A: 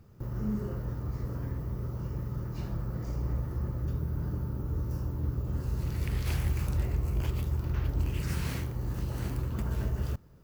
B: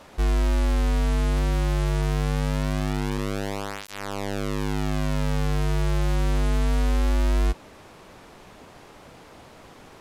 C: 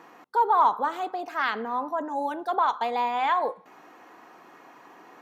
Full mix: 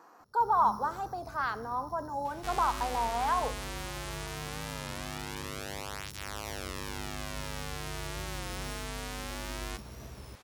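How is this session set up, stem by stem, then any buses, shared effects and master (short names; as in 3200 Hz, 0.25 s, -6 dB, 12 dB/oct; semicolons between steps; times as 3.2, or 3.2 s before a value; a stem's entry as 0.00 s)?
-8.0 dB, 0.20 s, no send, sample sorter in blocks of 8 samples; fifteen-band EQ 250 Hz +5 dB, 630 Hz +4 dB, 2500 Hz -10 dB
-6.0 dB, 2.25 s, no send, tilt +1.5 dB/oct
-3.0 dB, 0.00 s, no send, band shelf 2600 Hz -11.5 dB 1.2 oct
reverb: off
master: low shelf 480 Hz -9 dB; record warp 33 1/3 rpm, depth 100 cents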